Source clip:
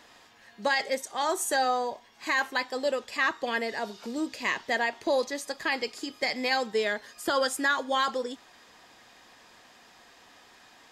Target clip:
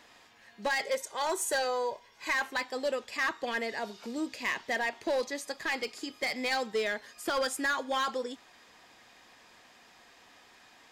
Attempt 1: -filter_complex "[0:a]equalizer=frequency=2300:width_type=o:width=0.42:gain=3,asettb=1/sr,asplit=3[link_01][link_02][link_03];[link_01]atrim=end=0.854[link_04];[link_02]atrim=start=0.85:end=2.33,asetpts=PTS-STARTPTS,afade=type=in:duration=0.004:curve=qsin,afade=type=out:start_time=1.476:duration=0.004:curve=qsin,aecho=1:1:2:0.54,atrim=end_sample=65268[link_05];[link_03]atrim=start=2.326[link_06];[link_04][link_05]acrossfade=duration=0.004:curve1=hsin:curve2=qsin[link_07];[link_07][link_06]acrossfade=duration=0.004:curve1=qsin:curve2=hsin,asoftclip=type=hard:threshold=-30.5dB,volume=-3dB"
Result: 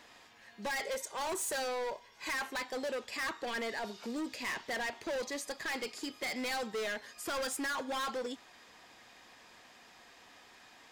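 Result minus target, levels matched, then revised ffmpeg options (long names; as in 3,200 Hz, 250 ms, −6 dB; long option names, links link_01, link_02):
hard clipping: distortion +9 dB
-filter_complex "[0:a]equalizer=frequency=2300:width_type=o:width=0.42:gain=3,asettb=1/sr,asplit=3[link_01][link_02][link_03];[link_01]atrim=end=0.854[link_04];[link_02]atrim=start=0.85:end=2.33,asetpts=PTS-STARTPTS,afade=type=in:duration=0.004:curve=qsin,afade=type=out:start_time=1.476:duration=0.004:curve=qsin,aecho=1:1:2:0.54,atrim=end_sample=65268[link_05];[link_03]atrim=start=2.326[link_06];[link_04][link_05]acrossfade=duration=0.004:curve1=hsin:curve2=qsin[link_07];[link_07][link_06]acrossfade=duration=0.004:curve1=qsin:curve2=hsin,asoftclip=type=hard:threshold=-21.5dB,volume=-3dB"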